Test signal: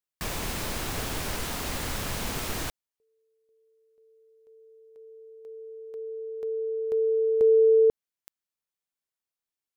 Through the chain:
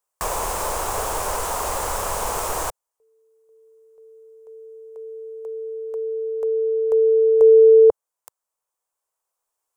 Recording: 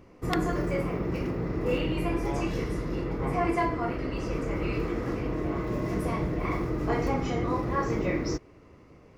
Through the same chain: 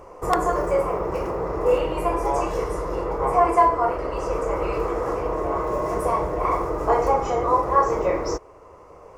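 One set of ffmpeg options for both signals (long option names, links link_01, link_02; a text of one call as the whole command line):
ffmpeg -i in.wav -filter_complex "[0:a]equalizer=frequency=125:width_type=o:width=1:gain=-8,equalizer=frequency=250:width_type=o:width=1:gain=-12,equalizer=frequency=500:width_type=o:width=1:gain=8,equalizer=frequency=1000:width_type=o:width=1:gain=11,equalizer=frequency=2000:width_type=o:width=1:gain=-5,equalizer=frequency=4000:width_type=o:width=1:gain=-7,equalizer=frequency=8000:width_type=o:width=1:gain=7,asplit=2[link_01][link_02];[link_02]acompressor=threshold=-39dB:ratio=6:release=965:detection=rms,volume=-1dB[link_03];[link_01][link_03]amix=inputs=2:normalize=0,volume=2.5dB" out.wav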